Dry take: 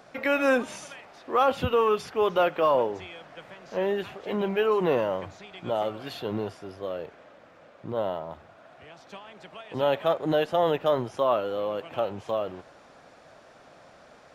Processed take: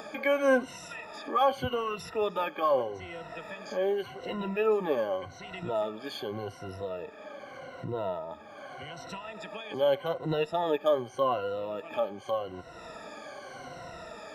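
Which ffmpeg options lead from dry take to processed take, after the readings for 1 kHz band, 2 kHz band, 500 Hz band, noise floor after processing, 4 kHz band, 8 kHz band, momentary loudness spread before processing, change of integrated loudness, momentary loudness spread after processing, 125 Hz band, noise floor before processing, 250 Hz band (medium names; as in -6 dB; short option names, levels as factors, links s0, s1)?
-3.5 dB, -3.0 dB, -3.5 dB, -49 dBFS, -2.5 dB, no reading, 21 LU, -4.0 dB, 17 LU, -3.5 dB, -54 dBFS, -4.5 dB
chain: -af "afftfilt=real='re*pow(10,20/40*sin(2*PI*(2*log(max(b,1)*sr/1024/100)/log(2)-(-0.84)*(pts-256)/sr)))':imag='im*pow(10,20/40*sin(2*PI*(2*log(max(b,1)*sr/1024/100)/log(2)-(-0.84)*(pts-256)/sr)))':win_size=1024:overlap=0.75,acompressor=mode=upward:threshold=0.0708:ratio=2.5,volume=0.398"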